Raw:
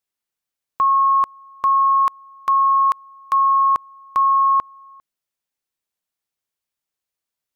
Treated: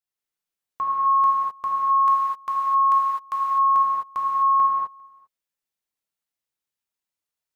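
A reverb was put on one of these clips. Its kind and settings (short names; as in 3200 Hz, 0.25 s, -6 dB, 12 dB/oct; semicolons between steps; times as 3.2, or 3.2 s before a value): non-linear reverb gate 0.28 s flat, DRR -5.5 dB; gain -9.5 dB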